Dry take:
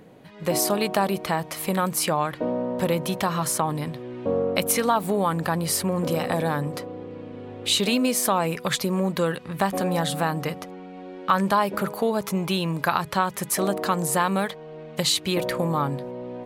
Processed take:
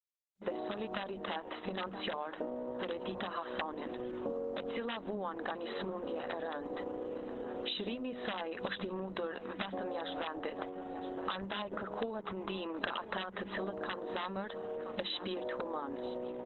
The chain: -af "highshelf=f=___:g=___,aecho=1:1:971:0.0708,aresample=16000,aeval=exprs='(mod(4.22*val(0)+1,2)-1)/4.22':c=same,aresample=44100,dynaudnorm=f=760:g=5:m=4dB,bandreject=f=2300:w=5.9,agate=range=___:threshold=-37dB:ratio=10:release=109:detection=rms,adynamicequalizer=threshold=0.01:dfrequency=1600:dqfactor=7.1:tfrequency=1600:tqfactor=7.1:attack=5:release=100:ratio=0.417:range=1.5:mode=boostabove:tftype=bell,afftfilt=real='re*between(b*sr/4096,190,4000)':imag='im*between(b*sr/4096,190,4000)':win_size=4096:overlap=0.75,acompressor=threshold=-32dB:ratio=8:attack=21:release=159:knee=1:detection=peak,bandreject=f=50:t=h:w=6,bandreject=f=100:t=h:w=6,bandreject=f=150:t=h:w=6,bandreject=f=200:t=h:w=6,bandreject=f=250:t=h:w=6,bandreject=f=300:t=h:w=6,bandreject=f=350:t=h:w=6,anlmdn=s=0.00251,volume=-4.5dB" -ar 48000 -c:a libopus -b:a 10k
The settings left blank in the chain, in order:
2700, -6, -51dB